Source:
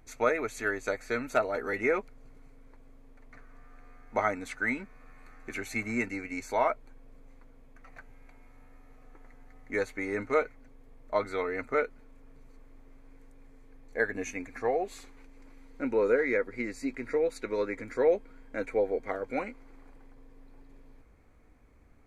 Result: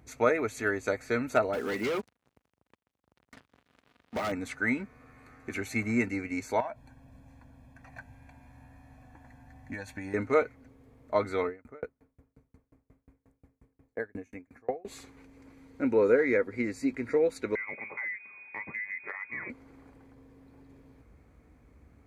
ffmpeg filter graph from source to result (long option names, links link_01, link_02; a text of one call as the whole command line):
ffmpeg -i in.wav -filter_complex "[0:a]asettb=1/sr,asplit=3[link_01][link_02][link_03];[link_01]atrim=end=1.534[link_04];[link_02]atrim=start=1.53:end=4.32,asetpts=PTS-STARTPTS,afade=type=in:duration=0.004:curve=qsin,afade=type=out:start_time=2.786:duration=0.004:curve=qsin,lowshelf=frequency=120:width_type=q:width=1.5:gain=-13.5,volume=30.5dB,asoftclip=hard,volume=-30.5dB,acrusher=bits=7:mix=0:aa=0.5[link_05];[link_03]atrim=start=4.316[link_06];[link_04][link_05]acrossfade=duration=0.004:curve1=hsin:curve2=qsin[link_07];[link_07][link_06]acrossfade=duration=0.004:curve1=qsin:curve2=hsin,asettb=1/sr,asplit=3[link_08][link_09][link_10];[link_08]atrim=end=6.604[link_11];[link_09]atrim=start=6.6:end=10.14,asetpts=PTS-STARTPTS,afade=type=in:duration=0.004:curve=qsin,afade=type=out:start_time=3.536:duration=0.004:curve=qsin,acompressor=threshold=-36dB:ratio=6:attack=3.2:release=140:knee=1:detection=peak,aecho=1:1:1.2:0.84,atrim=end_sample=156114[link_12];[link_10]atrim=start=10.136[link_13];[link_11][link_12]acrossfade=duration=0.004:curve1=hsin:curve2=qsin[link_14];[link_14][link_13]acrossfade=duration=0.004:curve1=qsin:curve2=hsin,asettb=1/sr,asplit=3[link_15][link_16][link_17];[link_15]atrim=end=11.474[link_18];[link_16]atrim=start=11.47:end=14.85,asetpts=PTS-STARTPTS,afade=type=in:duration=0.004:curve=qsin,afade=type=out:start_time=3.376:duration=0.004:curve=qsin,equalizer=frequency=4100:width=0.7:gain=-7.5,aeval=exprs='val(0)*pow(10,-36*if(lt(mod(5.6*n/s,1),2*abs(5.6)/1000),1-mod(5.6*n/s,1)/(2*abs(5.6)/1000),(mod(5.6*n/s,1)-2*abs(5.6)/1000)/(1-2*abs(5.6)/1000))/20)':channel_layout=same[link_19];[link_17]atrim=start=14.846[link_20];[link_18][link_19]acrossfade=duration=0.004:curve1=hsin:curve2=qsin[link_21];[link_21][link_20]acrossfade=duration=0.004:curve1=qsin:curve2=hsin,asettb=1/sr,asplit=3[link_22][link_23][link_24];[link_22]atrim=end=17.554[link_25];[link_23]atrim=start=17.55:end=19.5,asetpts=PTS-STARTPTS,afade=type=in:duration=0.004:curve=qsin,afade=type=out:start_time=1.946:duration=0.004:curve=qsin,lowpass=frequency=2100:width_type=q:width=0.5098,lowpass=frequency=2100:width_type=q:width=0.6013,lowpass=frequency=2100:width_type=q:width=0.9,lowpass=frequency=2100:width_type=q:width=2.563,afreqshift=-2500,acompressor=threshold=-34dB:ratio=5:attack=3.2:release=140:knee=1:detection=peak[link_26];[link_24]atrim=start=19.496[link_27];[link_25][link_26]acrossfade=duration=0.004:curve1=hsin:curve2=qsin[link_28];[link_28][link_27]acrossfade=duration=0.004:curve1=qsin:curve2=hsin,highpass=frequency=57:width=0.5412,highpass=frequency=57:width=1.3066,lowshelf=frequency=310:gain=7.5" out.wav